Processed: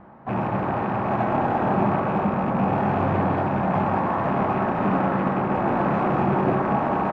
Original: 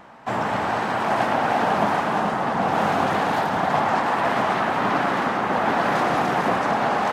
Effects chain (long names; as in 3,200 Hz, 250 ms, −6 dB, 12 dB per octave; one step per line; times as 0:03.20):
loose part that buzzes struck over −31 dBFS, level −17 dBFS
low-pass filter 1,600 Hz 12 dB per octave
low-shelf EQ 350 Hz +12 dB
in parallel at −9 dB: asymmetric clip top −19 dBFS
on the sum: double-tracking delay 30 ms −11 dB
on a send at −3.5 dB: convolution reverb RT60 2.2 s, pre-delay 3 ms
on the sum: level −8.5 dB